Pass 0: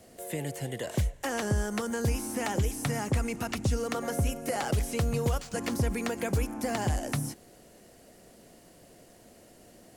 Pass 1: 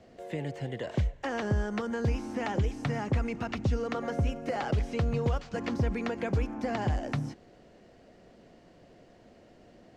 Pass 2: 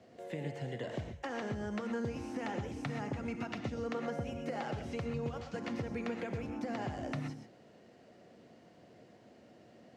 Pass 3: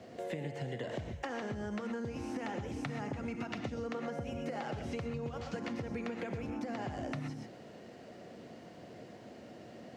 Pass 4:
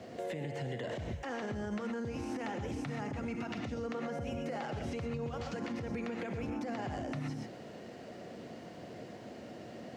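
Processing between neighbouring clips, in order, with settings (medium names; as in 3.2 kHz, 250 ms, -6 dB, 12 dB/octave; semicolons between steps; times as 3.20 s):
distance through air 180 m
high-pass 91 Hz 24 dB/octave; compression, threshold -32 dBFS, peak gain reduction 8.5 dB; gated-style reverb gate 150 ms rising, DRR 5.5 dB; trim -3.5 dB
compression 6:1, threshold -44 dBFS, peak gain reduction 11.5 dB; trim +8 dB
peak limiter -33.5 dBFS, peak gain reduction 9 dB; trim +3.5 dB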